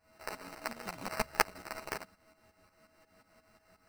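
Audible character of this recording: a buzz of ramps at a fixed pitch in blocks of 16 samples; tremolo saw up 5.6 Hz, depth 80%; aliases and images of a low sample rate 3400 Hz, jitter 0%; a shimmering, thickened sound

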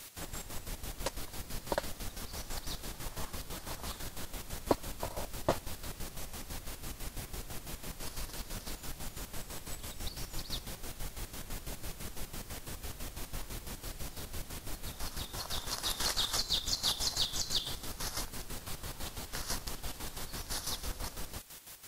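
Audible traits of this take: a quantiser's noise floor 8-bit, dither triangular; chopped level 6 Hz, depth 65%, duty 50%; Vorbis

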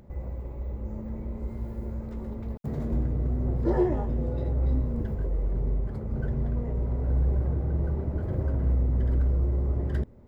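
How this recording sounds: noise floor -38 dBFS; spectral tilt -9.0 dB/oct

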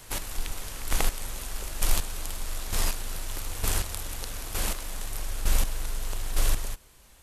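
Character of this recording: chopped level 1.1 Hz, depth 65%, duty 20%

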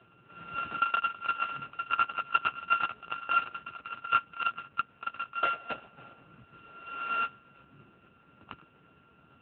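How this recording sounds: a buzz of ramps at a fixed pitch in blocks of 32 samples; tremolo saw down 8.6 Hz, depth 35%; AMR-NB

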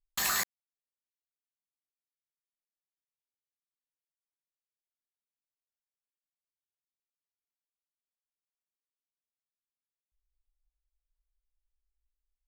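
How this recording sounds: noise floor -97 dBFS; spectral tilt 0.0 dB/oct

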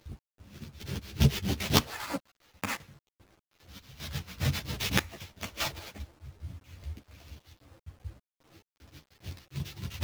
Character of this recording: aliases and images of a low sample rate 9100 Hz, jitter 20%; chopped level 2.5 Hz, depth 65%, duty 45%; a quantiser's noise floor 10-bit, dither none; a shimmering, thickened sound

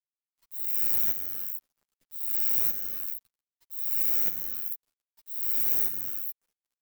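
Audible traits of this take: a quantiser's noise floor 10-bit, dither none; chopped level 0.63 Hz, depth 60%, duty 70%; a shimmering, thickened sound

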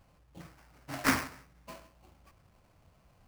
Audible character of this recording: aliases and images of a low sample rate 3600 Hz, jitter 20%

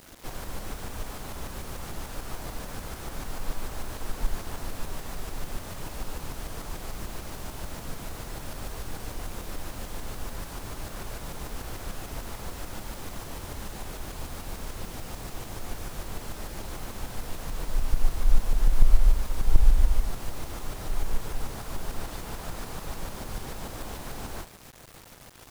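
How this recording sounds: tremolo saw up 6.8 Hz, depth 45%; a quantiser's noise floor 8-bit, dither none

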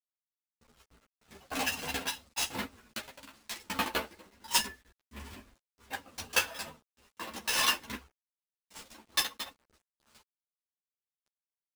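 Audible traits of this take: aliases and images of a low sample rate 16000 Hz, jitter 20%; tremolo saw down 3.3 Hz, depth 65%; a quantiser's noise floor 10-bit, dither none; a shimmering, thickened sound

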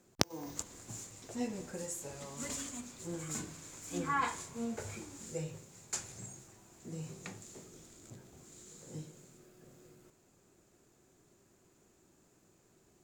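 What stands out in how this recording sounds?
noise floor -68 dBFS; spectral tilt -3.5 dB/oct

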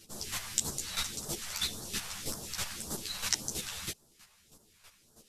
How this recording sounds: phasing stages 2, 1.8 Hz, lowest notch 270–2300 Hz; chopped level 3.1 Hz, depth 65%, duty 15%; a shimmering, thickened sound

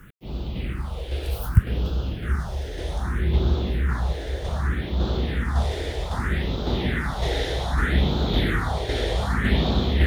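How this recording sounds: tremolo saw down 1.8 Hz, depth 40%; a quantiser's noise floor 10-bit, dither none; phasing stages 4, 0.64 Hz, lowest notch 190–1900 Hz

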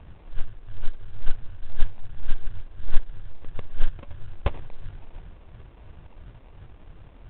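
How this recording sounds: a buzz of ramps at a fixed pitch in blocks of 16 samples; phasing stages 12, 2.9 Hz, lowest notch 110–1200 Hz; aliases and images of a low sample rate 1600 Hz, jitter 20%; µ-law

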